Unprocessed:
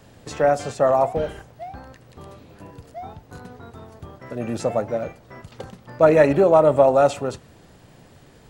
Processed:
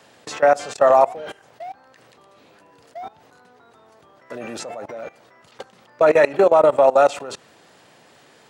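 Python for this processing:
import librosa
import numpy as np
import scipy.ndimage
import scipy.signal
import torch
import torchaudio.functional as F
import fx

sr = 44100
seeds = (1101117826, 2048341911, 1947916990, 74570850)

y = fx.weighting(x, sr, curve='A')
y = fx.level_steps(y, sr, step_db=20)
y = y * librosa.db_to_amplitude(8.0)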